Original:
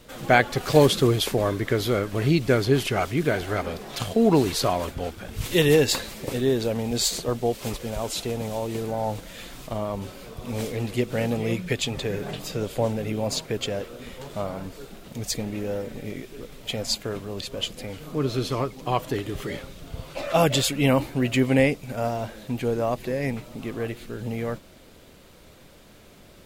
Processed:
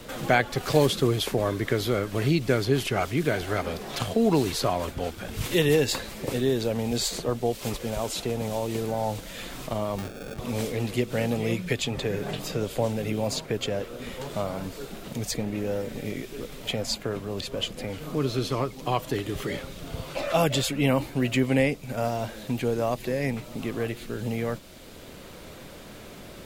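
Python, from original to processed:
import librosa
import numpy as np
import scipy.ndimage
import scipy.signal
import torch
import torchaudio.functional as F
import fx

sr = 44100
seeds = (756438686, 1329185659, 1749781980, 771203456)

y = fx.sample_hold(x, sr, seeds[0], rate_hz=1000.0, jitter_pct=0, at=(9.98, 10.39))
y = fx.band_squash(y, sr, depth_pct=40)
y = y * 10.0 ** (-1.5 / 20.0)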